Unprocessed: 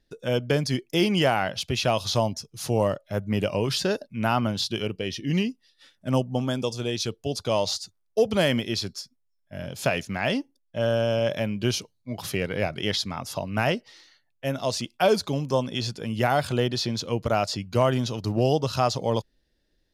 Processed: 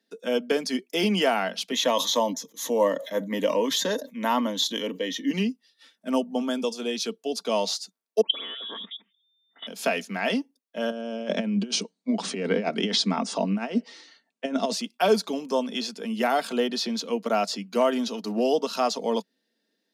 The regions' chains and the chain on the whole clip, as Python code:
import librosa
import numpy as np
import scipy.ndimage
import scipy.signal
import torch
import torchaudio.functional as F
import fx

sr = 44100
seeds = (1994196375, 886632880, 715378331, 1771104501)

y = fx.chain(x, sr, fx.ripple_eq(per_octave=1.1, db=13),
    fx.sustainer(db_per_s=89.0), at=(1.72, 5.31))
y = fx.chain(y, sr, fx.dispersion(late='lows', ms=85.0, hz=1600.0),
    fx.freq_invert(carrier_hz=3600),
    fx.level_steps(step_db=18), at=(8.21, 9.67))
y = fx.chain(y, sr, fx.low_shelf(hz=470.0, db=9.5),
    fx.over_compress(threshold_db=-23.0, ratio=-0.5),
    fx.brickwall_lowpass(high_hz=9400.0), at=(10.9, 14.73))
y = scipy.signal.sosfilt(scipy.signal.butter(12, 190.0, 'highpass', fs=sr, output='sos'), y)
y = y + 0.41 * np.pad(y, (int(4.4 * sr / 1000.0), 0))[:len(y)]
y = y * librosa.db_to_amplitude(-1.0)